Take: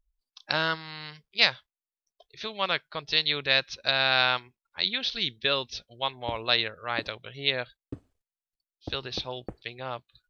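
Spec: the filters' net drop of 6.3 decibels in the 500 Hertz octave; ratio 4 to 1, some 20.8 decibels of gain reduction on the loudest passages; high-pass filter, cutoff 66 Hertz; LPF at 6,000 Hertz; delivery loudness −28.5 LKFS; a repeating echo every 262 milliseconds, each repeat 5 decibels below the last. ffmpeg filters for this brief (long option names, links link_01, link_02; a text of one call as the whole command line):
ffmpeg -i in.wav -af "highpass=66,lowpass=6000,equalizer=frequency=500:width_type=o:gain=-8,acompressor=threshold=-41dB:ratio=4,aecho=1:1:262|524|786|1048|1310|1572|1834:0.562|0.315|0.176|0.0988|0.0553|0.031|0.0173,volume=13.5dB" out.wav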